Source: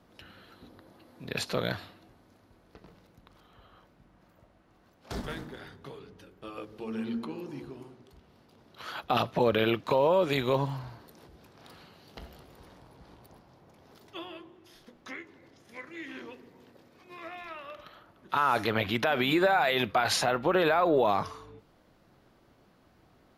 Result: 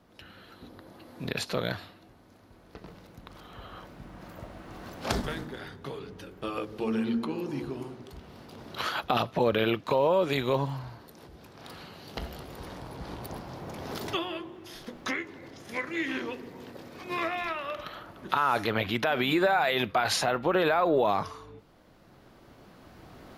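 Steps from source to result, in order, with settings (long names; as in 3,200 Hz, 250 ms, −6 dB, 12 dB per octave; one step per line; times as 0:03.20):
camcorder AGC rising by 6.4 dB per second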